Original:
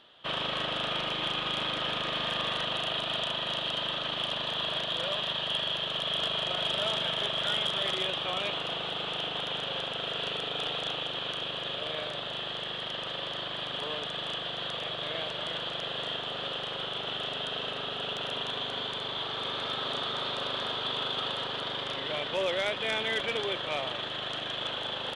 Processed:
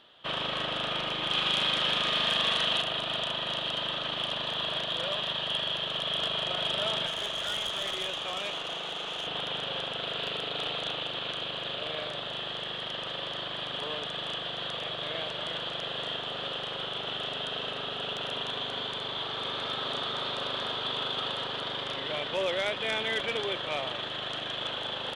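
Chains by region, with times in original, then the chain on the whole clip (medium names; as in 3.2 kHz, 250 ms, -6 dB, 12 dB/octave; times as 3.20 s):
1.31–2.82 s: treble shelf 2.2 kHz +7.5 dB + doubling 44 ms -11 dB
7.06–9.27 s: high-pass 260 Hz 6 dB/octave + valve stage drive 26 dB, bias 0.3
9.97–12.09 s: band-stop 5.5 kHz, Q 15 + loudspeaker Doppler distortion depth 0.13 ms
whole clip: none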